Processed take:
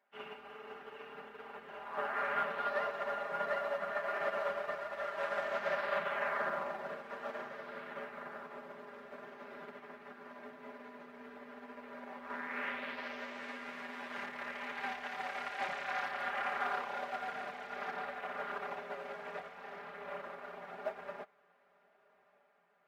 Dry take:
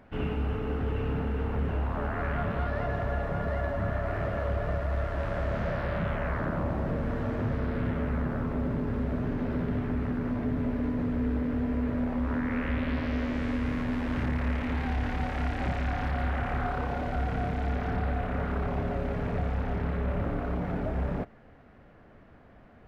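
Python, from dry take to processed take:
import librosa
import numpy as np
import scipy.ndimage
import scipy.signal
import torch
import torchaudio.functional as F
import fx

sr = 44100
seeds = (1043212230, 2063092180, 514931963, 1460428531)

y = scipy.signal.sosfilt(scipy.signal.butter(2, 730.0, 'highpass', fs=sr, output='sos'), x)
y = y + 0.95 * np.pad(y, (int(5.0 * sr / 1000.0), 0))[:len(y)]
y = fx.echo_diffused(y, sr, ms=1224, feedback_pct=56, wet_db=-13.5)
y = fx.upward_expand(y, sr, threshold_db=-46.0, expansion=2.5)
y = F.gain(torch.from_numpy(y), 1.5).numpy()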